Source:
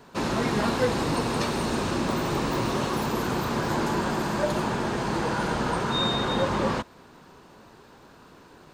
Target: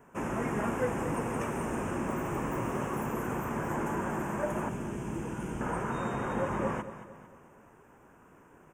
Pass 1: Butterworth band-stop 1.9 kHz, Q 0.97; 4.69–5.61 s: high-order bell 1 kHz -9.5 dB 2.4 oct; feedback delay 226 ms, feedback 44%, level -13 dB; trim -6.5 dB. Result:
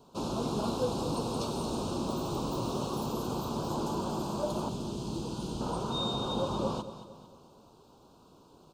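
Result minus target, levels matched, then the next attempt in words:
4 kHz band +15.0 dB
Butterworth band-stop 4.2 kHz, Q 0.97; 4.69–5.61 s: high-order bell 1 kHz -9.5 dB 2.4 oct; feedback delay 226 ms, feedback 44%, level -13 dB; trim -6.5 dB

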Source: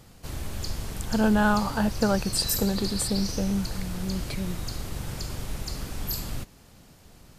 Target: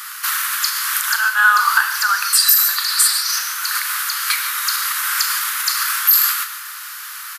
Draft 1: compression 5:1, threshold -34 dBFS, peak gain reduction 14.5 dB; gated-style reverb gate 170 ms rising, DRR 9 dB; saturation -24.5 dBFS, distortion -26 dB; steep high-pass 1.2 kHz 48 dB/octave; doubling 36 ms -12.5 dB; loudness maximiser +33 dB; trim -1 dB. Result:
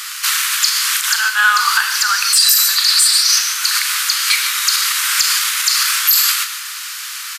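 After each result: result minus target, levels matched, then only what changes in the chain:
saturation: distortion +12 dB; 4 kHz band +4.0 dB
change: saturation -18 dBFS, distortion -38 dB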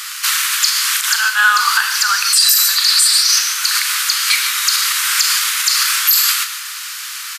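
4 kHz band +4.0 dB
add after steep high-pass: high-order bell 4.3 kHz -9 dB 2.3 oct

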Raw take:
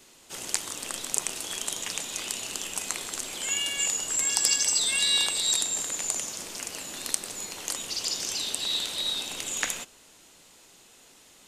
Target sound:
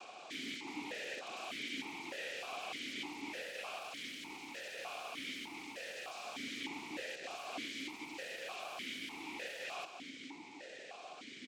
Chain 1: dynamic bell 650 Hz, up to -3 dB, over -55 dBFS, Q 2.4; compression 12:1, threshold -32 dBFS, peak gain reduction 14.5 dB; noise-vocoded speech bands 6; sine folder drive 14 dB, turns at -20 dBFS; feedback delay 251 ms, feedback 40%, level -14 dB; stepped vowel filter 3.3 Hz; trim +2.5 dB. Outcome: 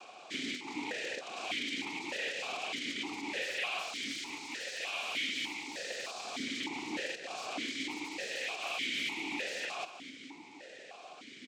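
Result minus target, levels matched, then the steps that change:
sine folder: distortion -13 dB
change: sine folder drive 14 dB, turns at -27 dBFS

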